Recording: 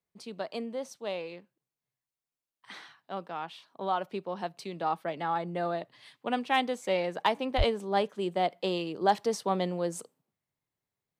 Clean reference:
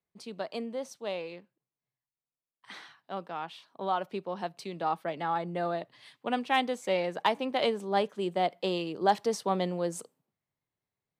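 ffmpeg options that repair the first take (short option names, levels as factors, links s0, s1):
-filter_complex "[0:a]asplit=3[s0][s1][s2];[s0]afade=t=out:st=7.57:d=0.02[s3];[s1]highpass=f=140:w=0.5412,highpass=f=140:w=1.3066,afade=t=in:st=7.57:d=0.02,afade=t=out:st=7.69:d=0.02[s4];[s2]afade=t=in:st=7.69:d=0.02[s5];[s3][s4][s5]amix=inputs=3:normalize=0"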